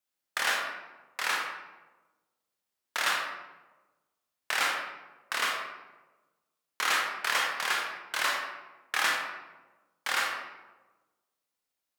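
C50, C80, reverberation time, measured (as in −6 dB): 2.0 dB, 5.0 dB, 1.2 s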